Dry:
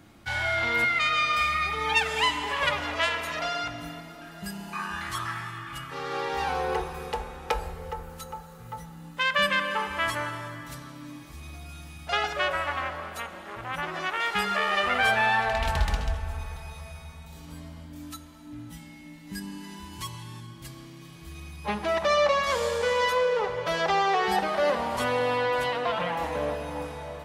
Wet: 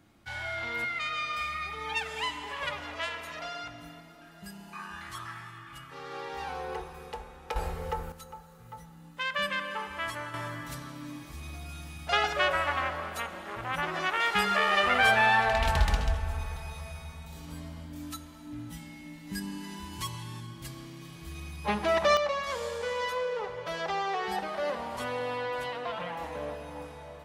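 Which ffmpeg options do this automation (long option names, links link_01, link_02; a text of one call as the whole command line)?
ffmpeg -i in.wav -af "asetnsamples=nb_out_samples=441:pad=0,asendcmd='7.56 volume volume 2dB;8.12 volume volume -7dB;10.34 volume volume 0.5dB;22.17 volume volume -7.5dB',volume=-8.5dB" out.wav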